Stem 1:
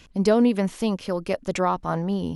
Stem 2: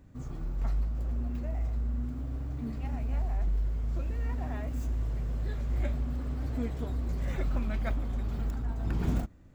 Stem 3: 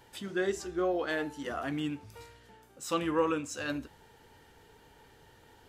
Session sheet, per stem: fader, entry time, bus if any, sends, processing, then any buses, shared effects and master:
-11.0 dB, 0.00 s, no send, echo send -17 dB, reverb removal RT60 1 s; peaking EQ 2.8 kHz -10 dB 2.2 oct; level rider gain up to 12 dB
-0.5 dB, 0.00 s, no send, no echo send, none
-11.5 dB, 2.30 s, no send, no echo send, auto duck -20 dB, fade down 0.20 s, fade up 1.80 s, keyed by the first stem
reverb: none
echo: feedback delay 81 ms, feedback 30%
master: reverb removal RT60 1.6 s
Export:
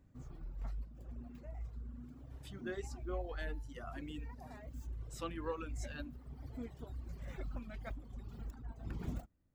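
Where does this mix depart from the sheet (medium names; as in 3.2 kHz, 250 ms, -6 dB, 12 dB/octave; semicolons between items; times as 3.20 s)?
stem 1: muted; stem 2 -0.5 dB -> -10.0 dB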